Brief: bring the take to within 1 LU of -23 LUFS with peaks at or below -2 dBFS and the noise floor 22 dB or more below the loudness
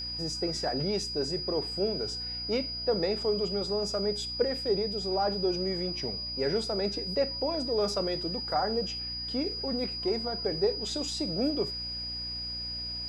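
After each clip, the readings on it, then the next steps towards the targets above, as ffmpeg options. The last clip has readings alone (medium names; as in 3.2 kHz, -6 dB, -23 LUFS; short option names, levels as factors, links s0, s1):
hum 60 Hz; highest harmonic 300 Hz; hum level -43 dBFS; steady tone 4.9 kHz; tone level -34 dBFS; loudness -30.0 LUFS; peak level -14.5 dBFS; loudness target -23.0 LUFS
-> -af "bandreject=f=60:t=h:w=6,bandreject=f=120:t=h:w=6,bandreject=f=180:t=h:w=6,bandreject=f=240:t=h:w=6,bandreject=f=300:t=h:w=6"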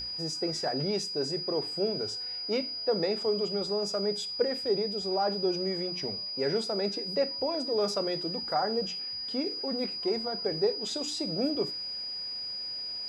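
hum not found; steady tone 4.9 kHz; tone level -34 dBFS
-> -af "bandreject=f=4900:w=30"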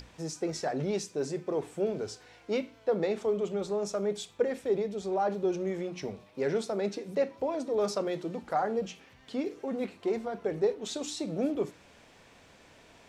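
steady tone not found; loudness -32.5 LUFS; peak level -15.0 dBFS; loudness target -23.0 LUFS
-> -af "volume=2.99"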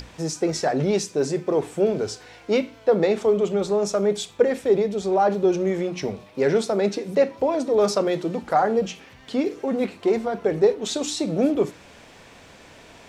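loudness -23.0 LUFS; peak level -5.5 dBFS; noise floor -48 dBFS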